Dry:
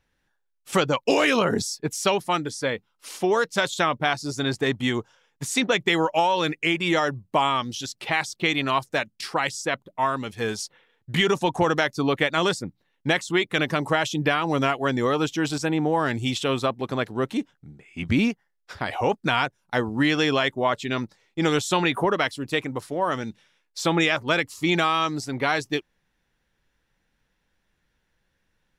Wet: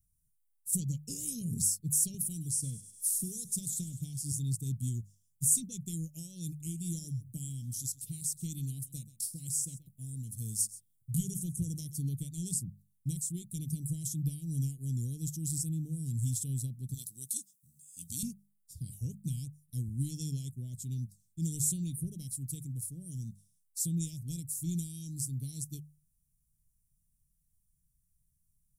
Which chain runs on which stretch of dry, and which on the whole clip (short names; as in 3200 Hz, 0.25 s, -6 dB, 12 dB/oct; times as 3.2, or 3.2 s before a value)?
2.14–4.32 thinning echo 0.101 s, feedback 55%, high-pass 590 Hz, level -14 dB + three-band squash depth 70%
6.47–12.09 high shelf 10000 Hz +3.5 dB + echo 0.131 s -17.5 dB
16.94–18.23 HPF 970 Hz 6 dB/oct + resonant high shelf 2700 Hz +11.5 dB, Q 1.5
whole clip: Chebyshev band-stop 150–8900 Hz, order 3; high shelf 2100 Hz +10.5 dB; notches 50/100/150/200 Hz